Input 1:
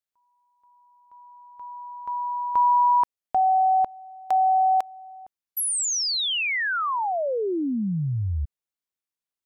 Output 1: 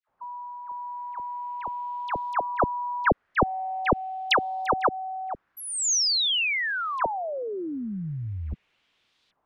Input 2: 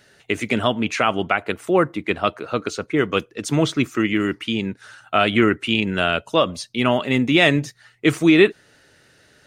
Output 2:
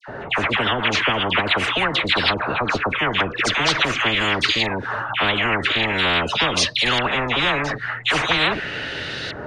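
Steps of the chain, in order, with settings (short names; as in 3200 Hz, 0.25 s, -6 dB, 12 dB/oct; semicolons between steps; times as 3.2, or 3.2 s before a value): LFO low-pass saw up 0.43 Hz 910–4000 Hz; dispersion lows, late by 85 ms, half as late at 1400 Hz; spectral compressor 10:1; gain -3.5 dB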